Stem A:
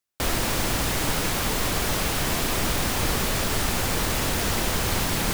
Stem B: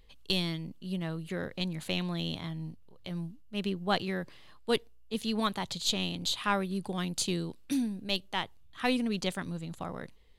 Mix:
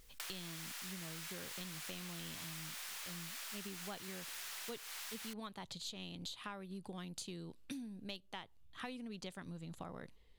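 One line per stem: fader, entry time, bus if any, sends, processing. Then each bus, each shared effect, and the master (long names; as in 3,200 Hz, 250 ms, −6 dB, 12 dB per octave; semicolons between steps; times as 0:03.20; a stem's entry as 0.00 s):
−10.0 dB, 0.00 s, no send, high-pass filter 1,500 Hz 12 dB per octave; pitch vibrato 2.8 Hz 35 cents; envelope flattener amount 50%
−4.5 dB, 0.00 s, no send, no processing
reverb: not used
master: downward compressor 12 to 1, threshold −43 dBFS, peak gain reduction 17 dB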